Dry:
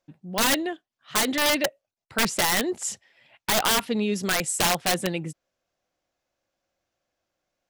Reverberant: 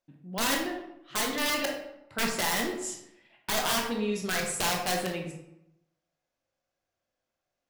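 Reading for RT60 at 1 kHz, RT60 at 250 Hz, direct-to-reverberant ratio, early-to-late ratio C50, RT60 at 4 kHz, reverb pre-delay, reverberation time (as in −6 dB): 0.80 s, 0.90 s, 0.5 dB, 4.5 dB, 0.55 s, 16 ms, 0.80 s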